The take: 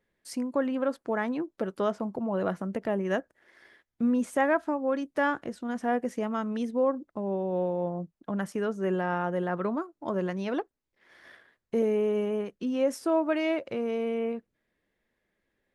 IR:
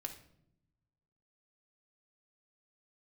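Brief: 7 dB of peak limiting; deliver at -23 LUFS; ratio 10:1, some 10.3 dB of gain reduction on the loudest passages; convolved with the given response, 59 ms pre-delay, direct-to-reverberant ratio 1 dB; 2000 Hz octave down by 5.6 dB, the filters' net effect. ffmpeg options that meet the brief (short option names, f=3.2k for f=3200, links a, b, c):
-filter_complex "[0:a]equalizer=f=2k:t=o:g=-7.5,acompressor=threshold=-32dB:ratio=10,alimiter=level_in=5.5dB:limit=-24dB:level=0:latency=1,volume=-5.5dB,asplit=2[a][b];[1:a]atrim=start_sample=2205,adelay=59[c];[b][c]afir=irnorm=-1:irlink=0,volume=1dB[d];[a][d]amix=inputs=2:normalize=0,volume=12.5dB"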